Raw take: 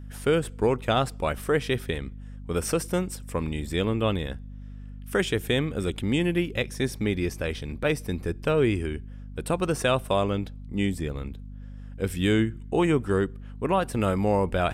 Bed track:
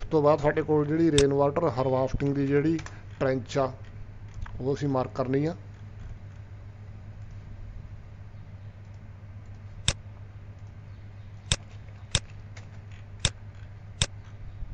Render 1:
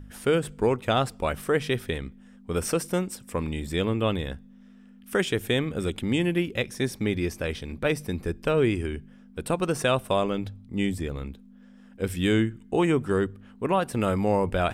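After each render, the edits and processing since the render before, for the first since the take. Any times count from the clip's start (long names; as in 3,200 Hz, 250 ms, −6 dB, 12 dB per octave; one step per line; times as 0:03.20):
hum removal 50 Hz, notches 3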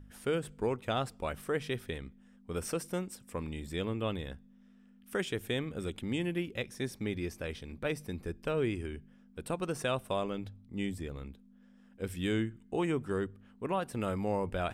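level −9 dB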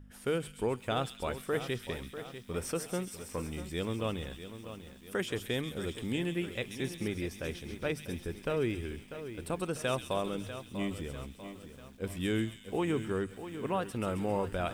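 delay with a high-pass on its return 134 ms, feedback 59%, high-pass 3,600 Hz, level −4 dB
feedback echo at a low word length 644 ms, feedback 55%, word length 9 bits, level −11 dB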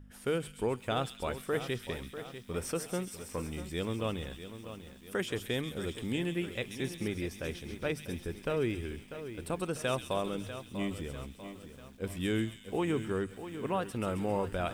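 no processing that can be heard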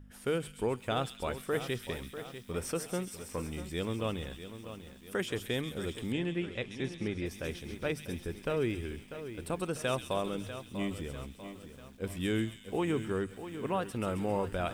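0:01.51–0:02.52: high-shelf EQ 8,300 Hz +4 dB
0:06.12–0:07.26: high-frequency loss of the air 80 metres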